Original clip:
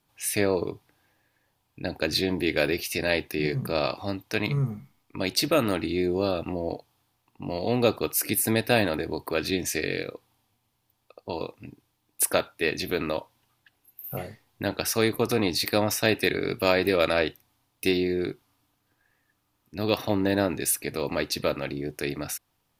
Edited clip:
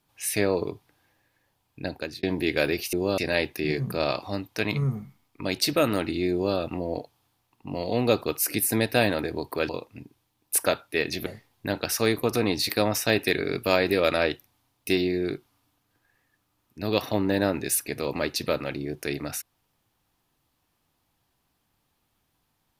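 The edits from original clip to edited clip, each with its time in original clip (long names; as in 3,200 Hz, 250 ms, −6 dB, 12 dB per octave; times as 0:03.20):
0:01.84–0:02.23: fade out
0:06.07–0:06.32: duplicate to 0:02.93
0:09.44–0:11.36: remove
0:12.93–0:14.22: remove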